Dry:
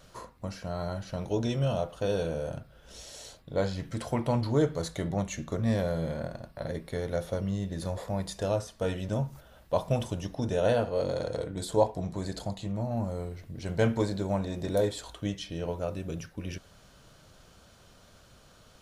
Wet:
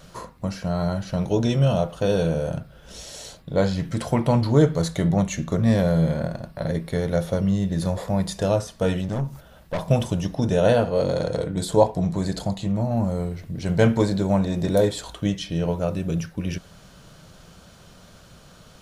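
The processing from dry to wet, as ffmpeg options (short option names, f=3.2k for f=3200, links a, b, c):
-filter_complex "[0:a]asettb=1/sr,asplit=3[a][b][c];[a]atrim=end=9.014[d];[b]atrim=start=9.01:end=9.89,asetpts=PTS-STARTPTS,afade=t=in:d=0.004:c=qsin,afade=t=out:st=0.876:d=0.004:c=qsin,aeval=exprs='(tanh(31.6*val(0)+0.45)-tanh(0.45))/31.6':c=same[e];[c]atrim=start=9.886[f];[d][e]acrossfade=d=0.004:c1=hsin:c2=qsin[g];[g][f]acrossfade=d=0.004:c1=qsin:c2=hsin,equalizer=f=170:w=3.2:g=7.5,volume=7dB"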